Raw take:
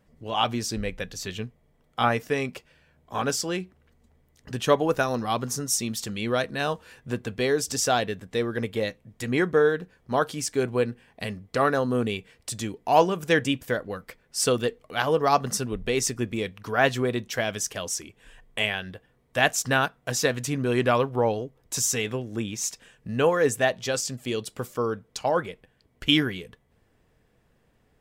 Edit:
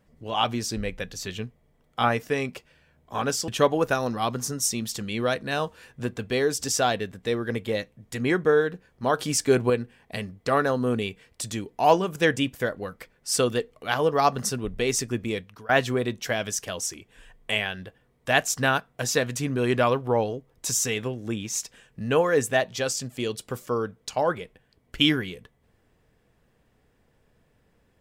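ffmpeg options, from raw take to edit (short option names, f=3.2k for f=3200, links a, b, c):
-filter_complex "[0:a]asplit=5[a][b][c][d][e];[a]atrim=end=3.482[f];[b]atrim=start=4.558:end=10.272[g];[c]atrim=start=10.268:end=10.782,asetpts=PTS-STARTPTS,volume=5dB[h];[d]atrim=start=10.778:end=16.77,asetpts=PTS-STARTPTS,afade=t=out:st=5.662:d=0.33:silence=0.0668344[i];[e]atrim=start=16.77,asetpts=PTS-STARTPTS,afade=t=in:d=0.004:c=hsin:silence=0.0668344[j];[f][g]acrossfade=d=0.004:c1=hsin:c2=hsin[k];[k][h]acrossfade=d=0.004:c1=hsin:c2=hsin[l];[i][j]concat=n=2:v=0:a=1[m];[l][m]acrossfade=d=0.004:c1=hsin:c2=hsin"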